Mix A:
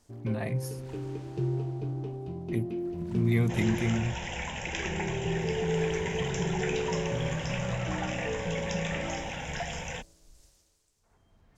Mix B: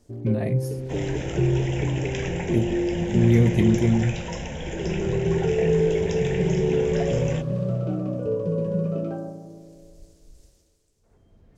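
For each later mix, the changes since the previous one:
second sound: entry -2.60 s; master: add resonant low shelf 670 Hz +7.5 dB, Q 1.5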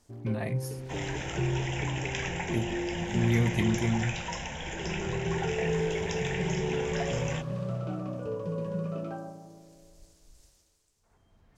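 master: add resonant low shelf 670 Hz -7.5 dB, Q 1.5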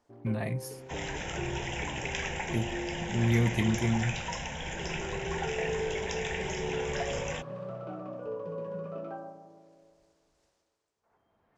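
first sound: add band-pass 810 Hz, Q 0.64

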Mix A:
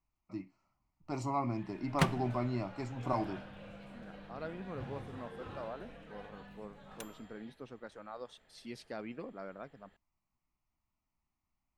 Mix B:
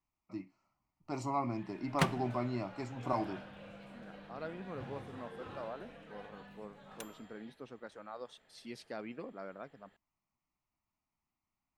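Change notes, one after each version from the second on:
master: add low shelf 77 Hz -11.5 dB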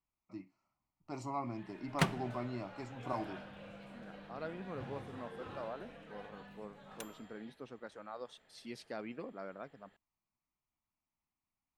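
first voice -4.5 dB

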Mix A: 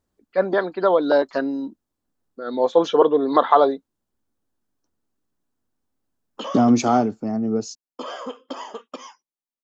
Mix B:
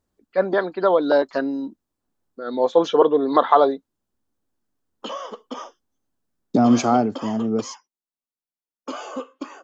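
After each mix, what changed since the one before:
background: entry -1.35 s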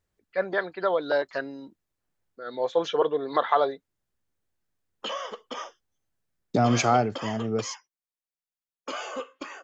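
first voice -5.0 dB; master: add graphic EQ 125/250/1000/2000 Hz +5/-11/-4/+7 dB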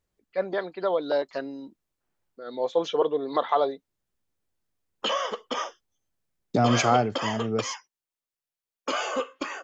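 first voice: add fifteen-band EQ 100 Hz -7 dB, 250 Hz +3 dB, 1600 Hz -8 dB; background +6.0 dB

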